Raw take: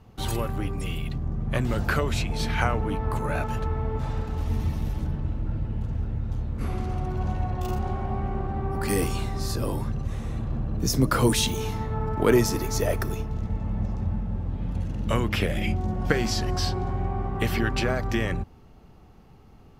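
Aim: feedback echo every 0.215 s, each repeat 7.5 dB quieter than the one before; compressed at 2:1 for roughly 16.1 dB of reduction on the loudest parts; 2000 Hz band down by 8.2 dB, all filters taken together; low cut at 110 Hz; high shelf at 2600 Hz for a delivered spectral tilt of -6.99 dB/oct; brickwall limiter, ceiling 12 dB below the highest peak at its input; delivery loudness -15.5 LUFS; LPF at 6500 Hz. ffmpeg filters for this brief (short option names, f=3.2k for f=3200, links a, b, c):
-af "highpass=110,lowpass=6.5k,equalizer=f=2k:t=o:g=-8,highshelf=f=2.6k:g=-7.5,acompressor=threshold=-46dB:ratio=2,alimiter=level_in=10dB:limit=-24dB:level=0:latency=1,volume=-10dB,aecho=1:1:215|430|645|860|1075:0.422|0.177|0.0744|0.0312|0.0131,volume=27dB"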